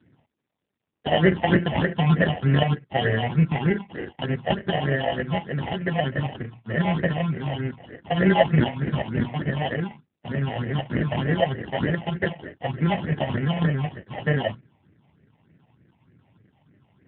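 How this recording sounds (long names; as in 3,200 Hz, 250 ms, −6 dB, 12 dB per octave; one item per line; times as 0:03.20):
aliases and images of a low sample rate 1,200 Hz, jitter 0%
phaser sweep stages 6, 3.3 Hz, lowest notch 350–1,000 Hz
AMR narrowband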